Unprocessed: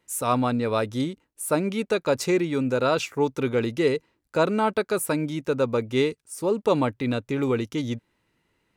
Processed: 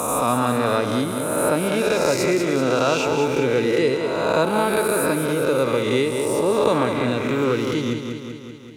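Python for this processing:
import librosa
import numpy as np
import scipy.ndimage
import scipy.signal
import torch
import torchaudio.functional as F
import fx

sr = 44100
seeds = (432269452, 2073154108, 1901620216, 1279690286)

p1 = fx.spec_swells(x, sr, rise_s=1.37)
p2 = p1 + fx.echo_feedback(p1, sr, ms=192, feedback_pct=51, wet_db=-7.5, dry=0)
y = fx.band_squash(p2, sr, depth_pct=40)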